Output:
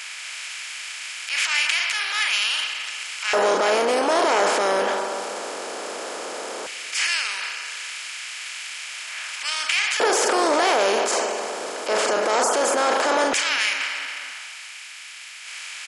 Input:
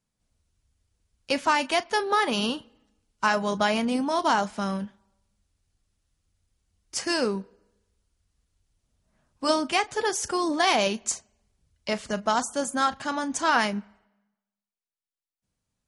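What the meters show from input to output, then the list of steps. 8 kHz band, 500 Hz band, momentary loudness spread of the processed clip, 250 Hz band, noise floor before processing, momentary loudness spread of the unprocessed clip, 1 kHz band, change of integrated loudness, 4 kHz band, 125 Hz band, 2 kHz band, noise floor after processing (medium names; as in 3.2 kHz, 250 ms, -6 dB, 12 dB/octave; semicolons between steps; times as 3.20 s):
+8.0 dB, +7.0 dB, 12 LU, -3.5 dB, under -85 dBFS, 9 LU, +3.0 dB, +3.5 dB, +8.0 dB, under -10 dB, +7.0 dB, -39 dBFS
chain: spectral levelling over time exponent 0.4; in parallel at +1 dB: compression, threshold -32 dBFS, peak gain reduction 18.5 dB; on the sum: peak limiter -9.5 dBFS, peak gain reduction 8 dB; transient shaper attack -7 dB, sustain +7 dB; LFO high-pass square 0.15 Hz 450–2300 Hz; on a send: feedback delay 248 ms, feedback 50%, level -19 dB; on the sum: transformer saturation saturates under 1.2 kHz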